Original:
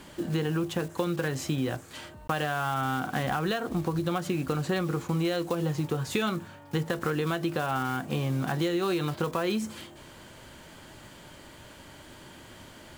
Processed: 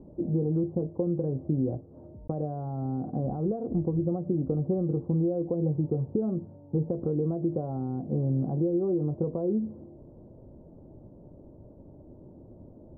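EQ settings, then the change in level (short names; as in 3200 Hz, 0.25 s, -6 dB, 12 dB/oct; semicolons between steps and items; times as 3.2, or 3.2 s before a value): inverse Chebyshev low-pass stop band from 2000 Hz, stop band 60 dB; air absorption 410 m; +2.5 dB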